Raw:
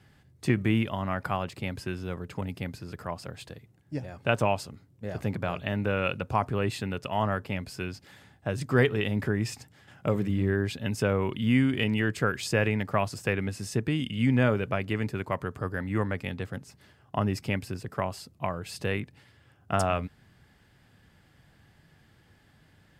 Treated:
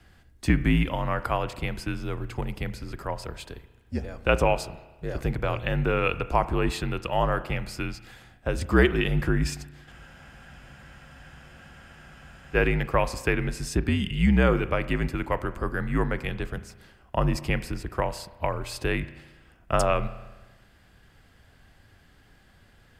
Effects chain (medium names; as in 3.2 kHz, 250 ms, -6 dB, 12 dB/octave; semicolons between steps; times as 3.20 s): spring tank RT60 1.2 s, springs 34 ms, chirp 75 ms, DRR 13.5 dB; frequency shift -59 Hz; spectral freeze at 9.93 s, 2.61 s; trim +3.5 dB